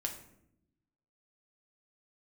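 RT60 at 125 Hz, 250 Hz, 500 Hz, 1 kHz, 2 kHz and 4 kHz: 1.4, 1.3, 0.90, 0.65, 0.60, 0.45 seconds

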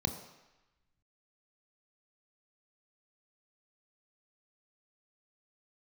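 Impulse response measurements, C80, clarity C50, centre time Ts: 10.5 dB, 9.0 dB, 18 ms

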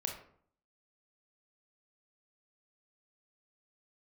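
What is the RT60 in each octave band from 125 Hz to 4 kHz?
0.70, 0.70, 0.60, 0.55, 0.45, 0.35 seconds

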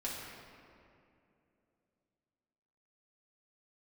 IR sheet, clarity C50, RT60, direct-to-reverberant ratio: 0.0 dB, 2.7 s, −6.5 dB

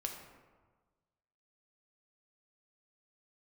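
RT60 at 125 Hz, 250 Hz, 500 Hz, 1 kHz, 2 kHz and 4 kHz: 1.7, 1.4, 1.4, 1.4, 1.1, 0.70 seconds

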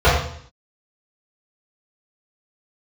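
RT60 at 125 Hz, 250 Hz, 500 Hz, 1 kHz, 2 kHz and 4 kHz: 0.70, 0.70, 0.60, 0.60, 0.60, 0.60 seconds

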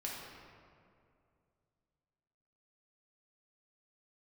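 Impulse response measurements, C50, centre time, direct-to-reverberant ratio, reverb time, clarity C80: −0.5 dB, 106 ms, −4.5 dB, 2.4 s, 1.5 dB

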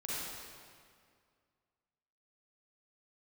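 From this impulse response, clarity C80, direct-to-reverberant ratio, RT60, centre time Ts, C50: −2.5 dB, −8.5 dB, 2.1 s, 154 ms, −6.0 dB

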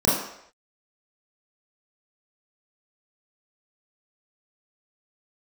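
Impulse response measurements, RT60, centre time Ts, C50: non-exponential decay, 58 ms, 1.5 dB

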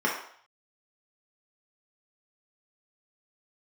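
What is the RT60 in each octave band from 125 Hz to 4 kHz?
0.35, 0.45, 0.55, 0.60, 0.55, 0.55 seconds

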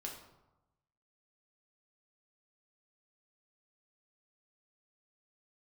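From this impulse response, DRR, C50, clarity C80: −1.0 dB, 5.5 dB, 8.5 dB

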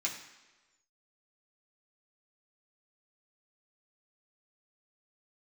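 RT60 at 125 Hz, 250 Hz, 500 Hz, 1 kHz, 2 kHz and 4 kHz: 0.95, 1.1, 1.2, 1.2, 1.2, 1.1 seconds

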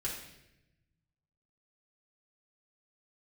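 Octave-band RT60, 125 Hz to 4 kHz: 2.0, 1.3, 1.0, 0.75, 0.95, 0.80 seconds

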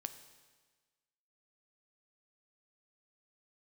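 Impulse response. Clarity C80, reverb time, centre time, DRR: 13.0 dB, 1.4 s, 11 ms, 9.5 dB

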